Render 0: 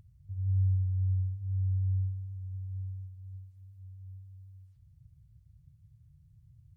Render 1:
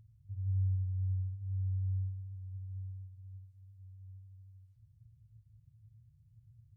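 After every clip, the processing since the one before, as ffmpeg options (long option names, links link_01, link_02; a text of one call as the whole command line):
ffmpeg -i in.wav -af "equalizer=frequency=110:width=6.1:gain=12.5,volume=-8dB" out.wav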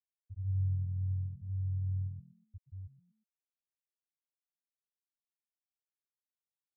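ffmpeg -i in.wav -filter_complex "[0:a]afftfilt=real='re*gte(hypot(re,im),0.112)':imag='im*gte(hypot(re,im),0.112)':win_size=1024:overlap=0.75,asplit=4[link_01][link_02][link_03][link_04];[link_02]adelay=119,afreqshift=41,volume=-18dB[link_05];[link_03]adelay=238,afreqshift=82,volume=-27.4dB[link_06];[link_04]adelay=357,afreqshift=123,volume=-36.7dB[link_07];[link_01][link_05][link_06][link_07]amix=inputs=4:normalize=0" out.wav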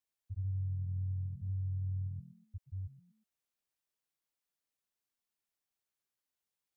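ffmpeg -i in.wav -af "acompressor=threshold=-39dB:ratio=6,volume=4.5dB" out.wav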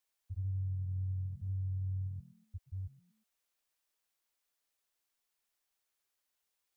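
ffmpeg -i in.wav -af "equalizer=frequency=160:width_type=o:width=1.8:gain=-10.5,volume=6dB" out.wav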